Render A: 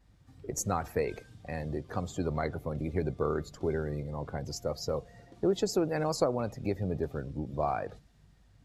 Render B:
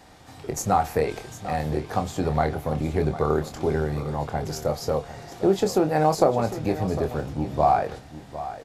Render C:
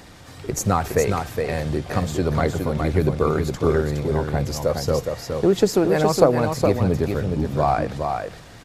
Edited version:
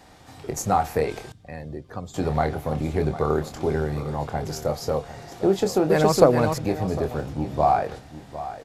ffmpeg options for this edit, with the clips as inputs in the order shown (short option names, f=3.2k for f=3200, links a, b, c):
-filter_complex "[1:a]asplit=3[a][b][c];[a]atrim=end=1.322[d];[0:a]atrim=start=1.318:end=2.142[e];[b]atrim=start=2.138:end=5.902[f];[2:a]atrim=start=5.898:end=6.582[g];[c]atrim=start=6.578[h];[d][e]acrossfade=d=0.004:c1=hsin:c2=hsin[i];[i][f]acrossfade=d=0.004:c1=hsin:c2=hsin[j];[j][g]acrossfade=d=0.004:c1=hsin:c2=hsin[k];[k][h]acrossfade=d=0.004:c1=hsin:c2=hsin"